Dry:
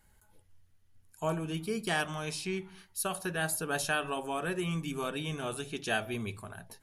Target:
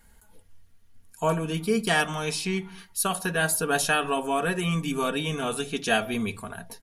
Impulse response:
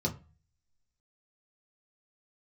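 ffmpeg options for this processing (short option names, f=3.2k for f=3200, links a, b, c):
-af "aecho=1:1:4.3:0.49,volume=7dB"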